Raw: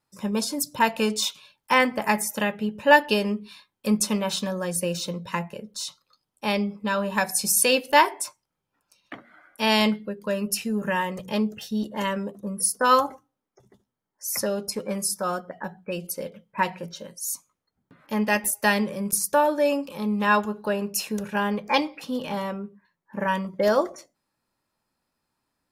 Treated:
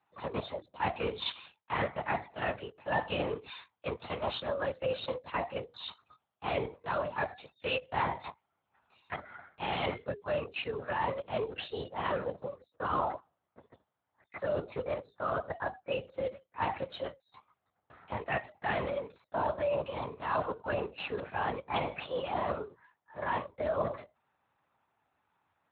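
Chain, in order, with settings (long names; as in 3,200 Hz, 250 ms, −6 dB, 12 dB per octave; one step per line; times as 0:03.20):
Bessel high-pass filter 710 Hz, order 8
tilt shelving filter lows +6 dB, about 1,300 Hz
reversed playback
downward compressor 6 to 1, threshold −37 dBFS, peak gain reduction 24 dB
reversed playback
linear-prediction vocoder at 8 kHz whisper
level +6.5 dB
Speex 28 kbit/s 32,000 Hz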